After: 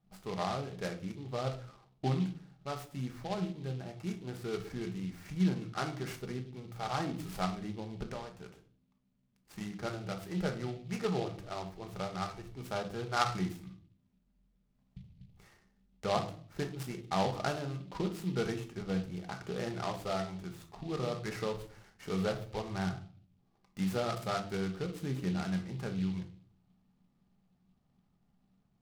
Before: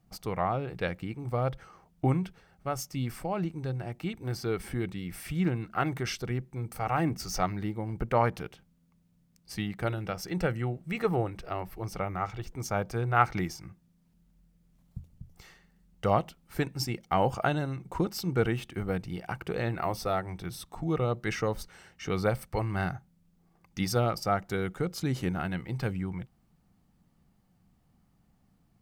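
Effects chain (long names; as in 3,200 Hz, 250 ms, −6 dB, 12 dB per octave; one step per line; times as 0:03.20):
low-shelf EQ 100 Hz −6.5 dB
0:08.10–0:09.61: downward compressor 12 to 1, threshold −34 dBFS, peak gain reduction 15 dB
high-shelf EQ 3,700 Hz −11 dB
convolution reverb RT60 0.45 s, pre-delay 5 ms, DRR 3.5 dB
short delay modulated by noise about 3,000 Hz, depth 0.052 ms
level −6.5 dB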